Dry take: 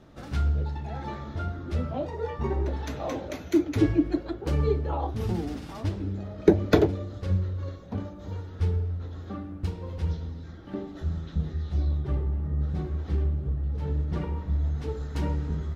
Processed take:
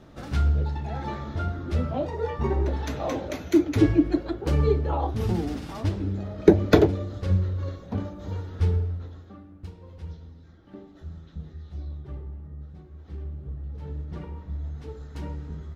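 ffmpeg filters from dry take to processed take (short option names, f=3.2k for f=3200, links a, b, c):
-af "volume=13dB,afade=t=out:st=8.75:d=0.54:silence=0.237137,afade=t=out:st=12.29:d=0.56:silence=0.446684,afade=t=in:st=12.85:d=0.69:silence=0.316228"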